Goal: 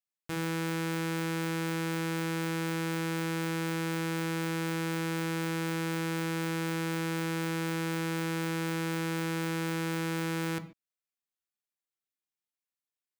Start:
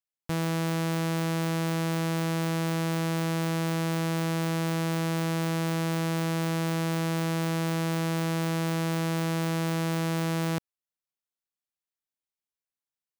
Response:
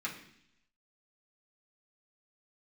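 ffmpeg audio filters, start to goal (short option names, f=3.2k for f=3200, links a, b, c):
-filter_complex "[0:a]asplit=2[a][b];[1:a]atrim=start_sample=2205,atrim=end_sample=6615[c];[b][c]afir=irnorm=-1:irlink=0,volume=-4dB[d];[a][d]amix=inputs=2:normalize=0,volume=-6dB"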